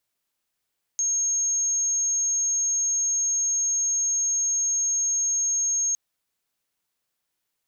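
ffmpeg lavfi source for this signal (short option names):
-f lavfi -i "sine=f=6500:d=4.96:r=44100,volume=-2.94dB"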